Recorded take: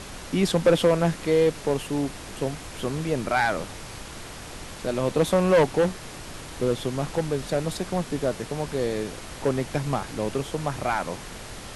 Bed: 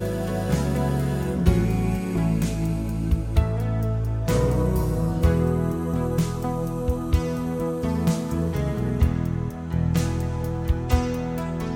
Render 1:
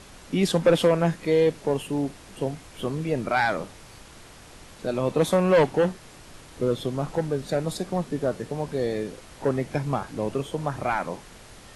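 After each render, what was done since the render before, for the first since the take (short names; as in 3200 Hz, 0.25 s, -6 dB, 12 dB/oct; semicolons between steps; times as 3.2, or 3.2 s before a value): noise print and reduce 8 dB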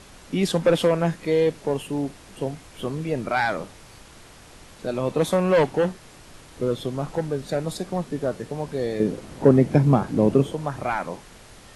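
9–10.53 bell 210 Hz +12.5 dB 3 oct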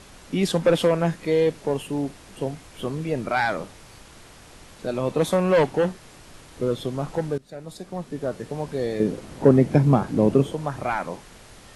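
7.38–8.55 fade in, from -20 dB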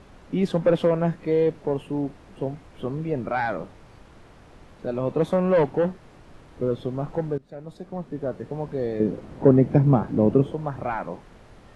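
LPF 1100 Hz 6 dB/oct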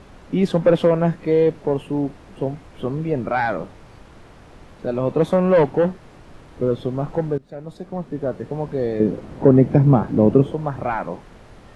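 gain +4.5 dB; limiter -2 dBFS, peak gain reduction 2.5 dB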